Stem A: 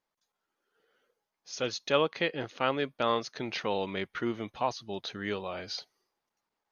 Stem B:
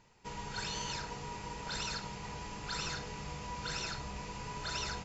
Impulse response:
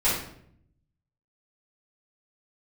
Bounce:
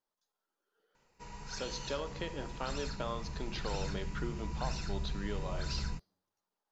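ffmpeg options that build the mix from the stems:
-filter_complex "[0:a]equalizer=f=2.2k:w=2.5:g=-7.5,acompressor=threshold=-30dB:ratio=6,volume=-5.5dB,asplit=2[a][b];[b]volume=-22dB[c];[1:a]bandreject=f=3.3k:w=5.6,asubboost=boost=11.5:cutoff=170,flanger=delay=7.2:depth=8.1:regen=-68:speed=1.2:shape=triangular,adelay=950,volume=-1.5dB[d];[2:a]atrim=start_sample=2205[e];[c][e]afir=irnorm=-1:irlink=0[f];[a][d][f]amix=inputs=3:normalize=0,equalizer=f=98:t=o:w=0.68:g=-11"

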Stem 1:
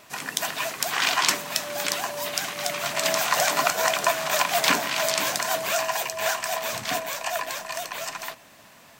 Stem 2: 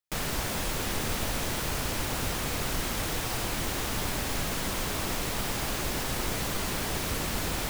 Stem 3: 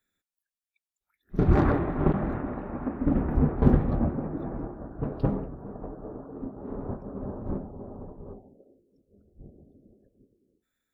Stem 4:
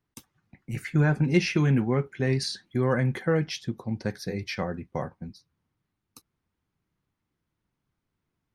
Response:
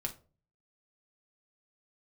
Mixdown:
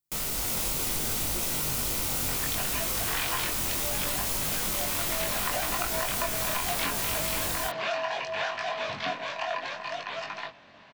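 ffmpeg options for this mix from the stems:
-filter_complex "[0:a]lowpass=f=4.2k:w=0.5412,lowpass=f=4.2k:w=1.3066,adelay=2150,volume=1.5dB[a];[1:a]bandreject=f=1.7k:w=8.5,dynaudnorm=f=340:g=3:m=6.5dB,crystalizer=i=2:c=0,volume=-2dB[b];[3:a]volume=-14dB[c];[a][b][c]amix=inputs=3:normalize=0,flanger=delay=19.5:depth=3.8:speed=0.69,acompressor=threshold=-26dB:ratio=6"

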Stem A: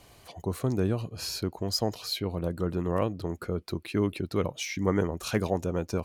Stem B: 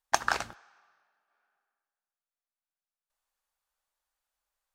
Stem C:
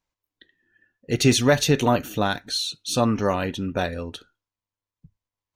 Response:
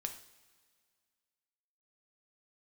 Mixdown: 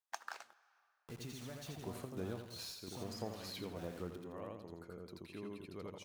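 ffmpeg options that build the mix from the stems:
-filter_complex "[0:a]lowshelf=f=100:g=-10.5,deesser=0.75,adelay=1400,volume=-3dB,asplit=2[a][b];[b]volume=-9.5dB[c];[1:a]highpass=500,acrusher=bits=5:mode=log:mix=0:aa=0.000001,volume=-9.5dB[d];[2:a]equalizer=f=140:w=0.82:g=6,acompressor=threshold=-20dB:ratio=4,acrusher=bits=4:mix=0:aa=0.000001,volume=-19dB,asplit=3[e][f][g];[f]volume=-4dB[h];[g]apad=whole_len=328534[i];[a][i]sidechaingate=range=-10dB:threshold=-51dB:ratio=16:detection=peak[j];[c][h]amix=inputs=2:normalize=0,aecho=0:1:83|166|249|332|415:1|0.36|0.13|0.0467|0.0168[k];[j][d][e][k]amix=inputs=4:normalize=0,acompressor=threshold=-58dB:ratio=1.5"

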